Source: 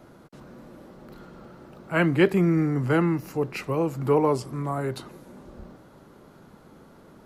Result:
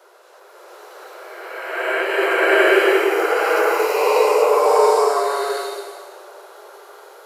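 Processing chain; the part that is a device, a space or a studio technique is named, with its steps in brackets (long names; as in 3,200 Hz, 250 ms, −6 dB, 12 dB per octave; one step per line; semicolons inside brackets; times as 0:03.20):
elliptic high-pass filter 380 Hz, stop band 40 dB
high-shelf EQ 6,600 Hz +5 dB
ghost voice (reversed playback; convolution reverb RT60 1.9 s, pre-delay 43 ms, DRR −5 dB; reversed playback; high-pass filter 430 Hz 24 dB per octave)
slow-attack reverb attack 730 ms, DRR −8 dB
level −1 dB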